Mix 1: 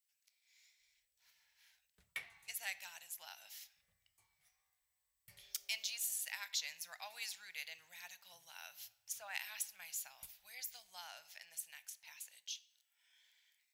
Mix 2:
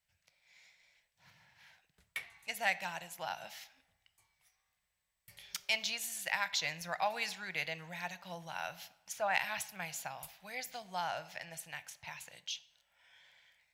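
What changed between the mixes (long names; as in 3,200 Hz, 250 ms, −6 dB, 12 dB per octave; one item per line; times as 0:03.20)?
speech: remove first difference
background +3.5 dB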